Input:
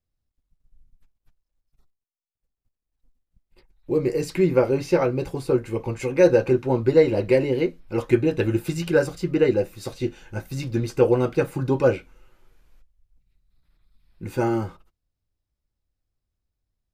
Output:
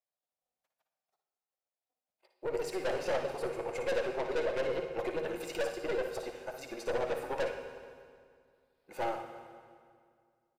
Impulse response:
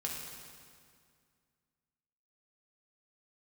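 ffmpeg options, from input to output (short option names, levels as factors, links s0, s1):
-filter_complex "[0:a]atempo=1.6,highpass=f=650:t=q:w=3.8,aeval=exprs='(tanh(14.1*val(0)+0.45)-tanh(0.45))/14.1':c=same,asplit=2[s0][s1];[1:a]atrim=start_sample=2205,adelay=57[s2];[s1][s2]afir=irnorm=-1:irlink=0,volume=0.473[s3];[s0][s3]amix=inputs=2:normalize=0,volume=0.473"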